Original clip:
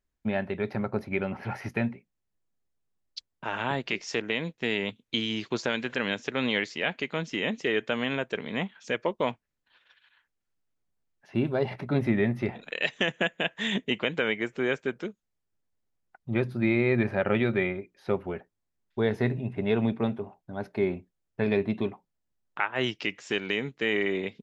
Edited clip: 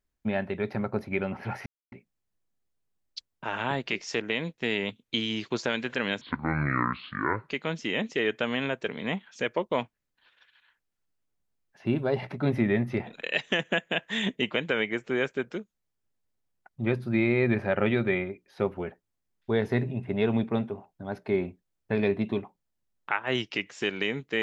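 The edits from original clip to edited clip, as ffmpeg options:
ffmpeg -i in.wav -filter_complex "[0:a]asplit=5[link_01][link_02][link_03][link_04][link_05];[link_01]atrim=end=1.66,asetpts=PTS-STARTPTS,afade=type=out:start_time=1.656:duration=0.004:curve=hsin[link_06];[link_02]atrim=start=1.66:end=1.92,asetpts=PTS-STARTPTS,volume=0[link_07];[link_03]atrim=start=1.92:end=6.214,asetpts=PTS-STARTPTS,afade=type=in:duration=0.004:curve=hsin[link_08];[link_04]atrim=start=6.21:end=6.98,asetpts=PTS-STARTPTS,asetrate=26460,aresample=44100[link_09];[link_05]atrim=start=6.976[link_10];[link_06][link_07][link_08]concat=n=3:v=0:a=1[link_11];[link_11][link_09]acrossfade=duration=0.004:curve1=hsin:curve2=hsin[link_12];[link_12][link_10]acrossfade=duration=0.004:curve1=hsin:curve2=hsin" out.wav

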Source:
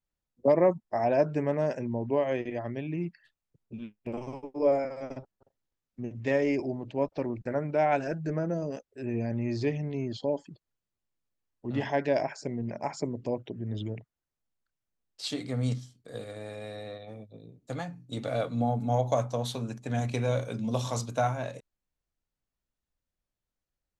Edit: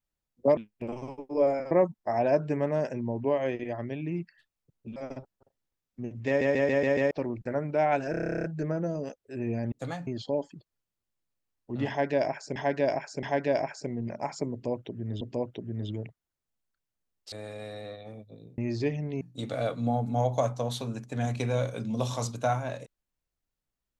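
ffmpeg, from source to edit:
ffmpeg -i in.wav -filter_complex "[0:a]asplit=29[link_01][link_02][link_03][link_04][link_05][link_06][link_07][link_08][link_09][link_10][link_11][link_12][link_13][link_14][link_15][link_16][link_17][link_18][link_19][link_20][link_21][link_22][link_23][link_24][link_25][link_26][link_27][link_28][link_29];[link_01]atrim=end=0.572[link_30];[link_02]atrim=start=3.818:end=4.962[link_31];[link_03]atrim=start=0.568:end=3.822[link_32];[link_04]atrim=start=4.958:end=6.412[link_33];[link_05]atrim=start=6.268:end=6.412[link_34];[link_06]atrim=start=6.268:end=6.412[link_35];[link_07]atrim=start=6.268:end=6.412[link_36];[link_08]atrim=start=6.268:end=6.412[link_37];[link_09]atrim=start=6.268:end=6.412[link_38];[link_10]atrim=start=7.108:end=8.142[link_39];[link_11]atrim=start=8.108:end=8.142[link_40];[link_12]atrim=start=8.108:end=8.142[link_41];[link_13]atrim=start=8.108:end=8.142[link_42];[link_14]atrim=start=8.108:end=8.142[link_43];[link_15]atrim=start=8.108:end=8.142[link_44];[link_16]atrim=start=8.108:end=8.142[link_45];[link_17]atrim=start=8.108:end=8.142[link_46];[link_18]atrim=start=8.108:end=8.142[link_47];[link_19]atrim=start=8.108:end=8.142[link_48];[link_20]atrim=start=8.108:end=8.142[link_49];[link_21]atrim=start=8.108:end=9.392[link_50];[link_22]atrim=start=17.598:end=17.952[link_51];[link_23]atrim=start=10.018:end=12.512[link_52];[link_24]atrim=start=11.838:end=12.512[link_53];[link_25]atrim=start=11.838:end=13.822[link_54];[link_26]atrim=start=13.128:end=15.242[link_55];[link_27]atrim=start=16.338:end=17.602[link_56];[link_28]atrim=start=9.388:end=10.022[link_57];[link_29]atrim=start=17.948[link_58];[link_30][link_31]acrossfade=duration=0.004:curve1=hsin:curve2=hsin[link_59];[link_59][link_32]acrossfade=duration=0.004:curve1=hsin:curve2=hsin[link_60];[link_60][link_33]acrossfade=duration=0.004:curve1=hsin:curve2=hsin[link_61];[link_61][link_34]acrossfade=duration=0.004:curve1=hsin:curve2=hsin[link_62];[link_62][link_35]acrossfade=duration=0.004:curve1=hsin:curve2=hsin[link_63];[link_63][link_36]acrossfade=duration=0.004:curve1=hsin:curve2=hsin[link_64];[link_64][link_37]acrossfade=duration=0.004:curve1=hsin:curve2=hsin[link_65];[link_65][link_38]acrossfade=duration=0.004:curve1=hsin:curve2=hsin[link_66];[link_66][link_39]acrossfade=duration=0.004:curve1=hsin:curve2=hsin[link_67];[link_67][link_40]acrossfade=duration=0.004:curve1=hsin:curve2=hsin[link_68];[link_68][link_41]acrossfade=duration=0.004:curve1=hsin:curve2=hsin[link_69];[link_69][link_42]acrossfade=duration=0.004:curve1=hsin:curve2=hsin[link_70];[link_70][link_43]acrossfade=duration=0.004:curve1=hsin:curve2=hsin[link_71];[link_71][link_44]acrossfade=duration=0.004:curve1=hsin:curve2=hsin[link_72];[link_72][link_45]acrossfade=duration=0.004:curve1=hsin:curve2=hsin[link_73];[link_73][link_46]acrossfade=duration=0.004:curve1=hsin:curve2=hsin[link_74];[link_74][link_47]acrossfade=duration=0.004:curve1=hsin:curve2=hsin[link_75];[link_75][link_48]acrossfade=duration=0.004:curve1=hsin:curve2=hsin[link_76];[link_76][link_49]acrossfade=duration=0.004:curve1=hsin:curve2=hsin[link_77];[link_77][link_50]acrossfade=duration=0.004:curve1=hsin:curve2=hsin[link_78];[link_78][link_51]acrossfade=duration=0.004:curve1=hsin:curve2=hsin[link_79];[link_79][link_52]acrossfade=duration=0.004:curve1=hsin:curve2=hsin[link_80];[link_80][link_53]acrossfade=duration=0.004:curve1=hsin:curve2=hsin[link_81];[link_81][link_54]acrossfade=duration=0.004:curve1=hsin:curve2=hsin[link_82];[link_82][link_55]acrossfade=duration=0.004:curve1=hsin:curve2=hsin[link_83];[link_83][link_56]acrossfade=duration=0.004:curve1=hsin:curve2=hsin[link_84];[link_84][link_57]acrossfade=duration=0.004:curve1=hsin:curve2=hsin[link_85];[link_85][link_58]acrossfade=duration=0.004:curve1=hsin:curve2=hsin" out.wav

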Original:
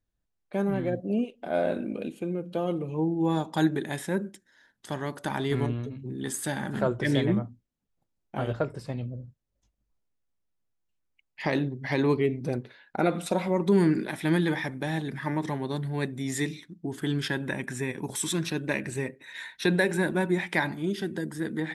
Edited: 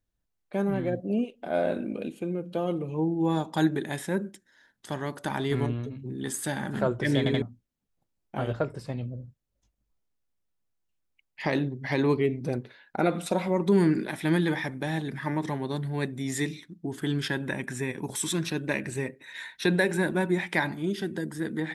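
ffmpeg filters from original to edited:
ffmpeg -i in.wav -filter_complex "[0:a]asplit=4[link_01][link_02][link_03][link_04];[link_01]atrim=end=7.262[link_05];[link_02]atrim=start=7.178:end=7.262[link_06];[link_03]atrim=start=7.178:end=7.262[link_07];[link_04]atrim=start=7.418[link_08];[link_05][link_06]acrossfade=duration=0.004:curve1=hsin:curve2=hsin[link_09];[link_09][link_07]acrossfade=duration=0.004:curve1=hsin:curve2=hsin[link_10];[link_10][link_08]acrossfade=duration=0.004:curve1=hsin:curve2=hsin" out.wav

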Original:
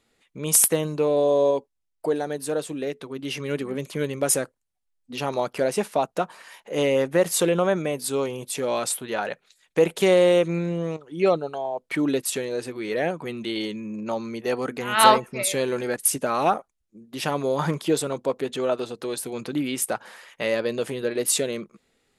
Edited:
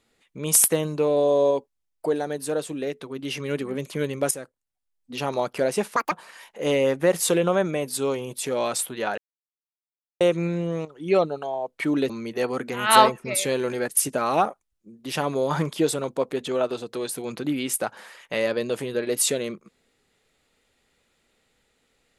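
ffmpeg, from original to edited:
ffmpeg -i in.wav -filter_complex "[0:a]asplit=7[link_01][link_02][link_03][link_04][link_05][link_06][link_07];[link_01]atrim=end=4.31,asetpts=PTS-STARTPTS,afade=type=out:start_time=4.306:duration=0.004:curve=hsin:silence=0.237137[link_08];[link_02]atrim=start=4.31:end=5.964,asetpts=PTS-STARTPTS,afade=type=in:duration=0.86:silence=0.237137[link_09];[link_03]atrim=start=5.96:end=6.23,asetpts=PTS-STARTPTS,asetrate=76293,aresample=44100[link_10];[link_04]atrim=start=6.226:end=9.29,asetpts=PTS-STARTPTS,afade=type=out:start_time=3.06:duration=0.004:curve=hsin[link_11];[link_05]atrim=start=9.29:end=10.32,asetpts=PTS-STARTPTS,volume=0[link_12];[link_06]atrim=start=10.32:end=12.212,asetpts=PTS-STARTPTS,afade=type=in:duration=0.004:curve=hsin[link_13];[link_07]atrim=start=14.178[link_14];[link_08][link_09]concat=n=2:v=0:a=1[link_15];[link_15][link_10]acrossfade=duration=0.004:curve1=hsin:curve2=hsin[link_16];[link_11][link_12][link_13]concat=n=3:v=0:a=1[link_17];[link_16][link_17]acrossfade=duration=0.004:curve1=hsin:curve2=hsin[link_18];[link_18][link_14]acrossfade=duration=0.004:curve1=hsin:curve2=hsin" out.wav

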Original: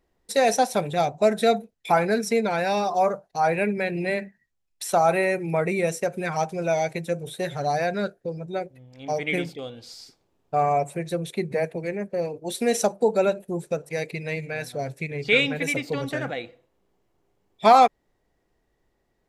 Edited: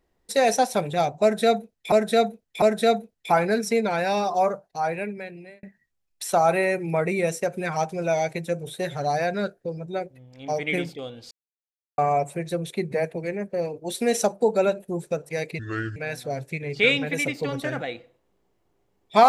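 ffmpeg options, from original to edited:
ffmpeg -i in.wav -filter_complex "[0:a]asplit=8[link_01][link_02][link_03][link_04][link_05][link_06][link_07][link_08];[link_01]atrim=end=1.922[link_09];[link_02]atrim=start=1.218:end=1.922[link_10];[link_03]atrim=start=1.218:end=4.23,asetpts=PTS-STARTPTS,afade=type=out:start_time=1.762:duration=1.25[link_11];[link_04]atrim=start=4.23:end=9.91,asetpts=PTS-STARTPTS,afade=type=in:duration=0.004:curve=hsin,afade=type=out:start_time=5.676:duration=0.004:curve=hsin[link_12];[link_05]atrim=start=9.91:end=10.58,asetpts=PTS-STARTPTS,volume=0[link_13];[link_06]atrim=start=10.58:end=14.194,asetpts=PTS-STARTPTS,afade=type=in:duration=0.004:curve=hsin[link_14];[link_07]atrim=start=14.19:end=14.45,asetpts=PTS-STARTPTS,asetrate=30870,aresample=44100,atrim=end_sample=16380,asetpts=PTS-STARTPTS[link_15];[link_08]atrim=start=14.446[link_16];[link_09][link_10]acrossfade=duration=0.004:curve1=hsin:curve2=hsin[link_17];[link_11][link_12][link_13][link_14]concat=n=4:v=0:a=1[link_18];[link_17][link_18]acrossfade=duration=0.004:curve1=hsin:curve2=hsin[link_19];[link_19][link_15]acrossfade=duration=0.004:curve1=hsin:curve2=hsin[link_20];[link_20][link_16]acrossfade=duration=0.004:curve1=hsin:curve2=hsin" out.wav

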